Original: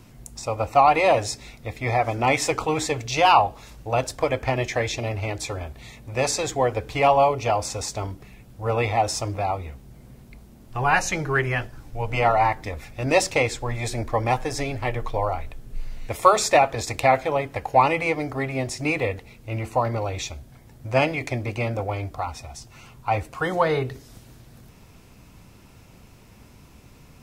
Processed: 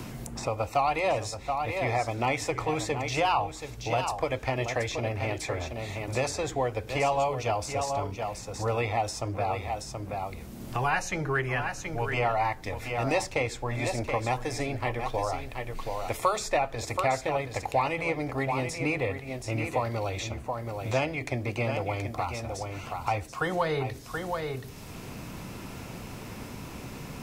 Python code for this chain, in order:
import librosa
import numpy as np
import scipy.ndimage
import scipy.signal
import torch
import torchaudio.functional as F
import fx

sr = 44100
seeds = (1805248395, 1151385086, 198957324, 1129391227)

y = x + 10.0 ** (-10.0 / 20.0) * np.pad(x, (int(727 * sr / 1000.0), 0))[:len(x)]
y = fx.band_squash(y, sr, depth_pct=70)
y = y * librosa.db_to_amplitude(-6.0)